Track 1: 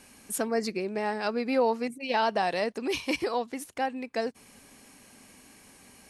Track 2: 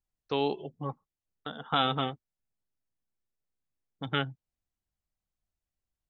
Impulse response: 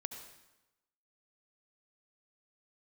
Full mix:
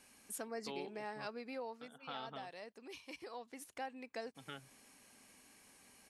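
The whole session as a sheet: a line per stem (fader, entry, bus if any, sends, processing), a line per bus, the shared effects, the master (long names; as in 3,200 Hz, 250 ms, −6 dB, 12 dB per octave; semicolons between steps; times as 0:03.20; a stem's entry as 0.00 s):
0:01.26 −9 dB → 0:01.99 −19 dB → 0:03.11 −19 dB → 0:03.74 −8.5 dB, 0.00 s, no send, low-shelf EQ 410 Hz −6 dB
−8.0 dB, 0.35 s, no send, Bessel high-pass filter 170 Hz; automatic ducking −9 dB, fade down 1.70 s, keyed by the first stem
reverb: not used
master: downward compressor 1.5 to 1, threshold −47 dBFS, peak gain reduction 5 dB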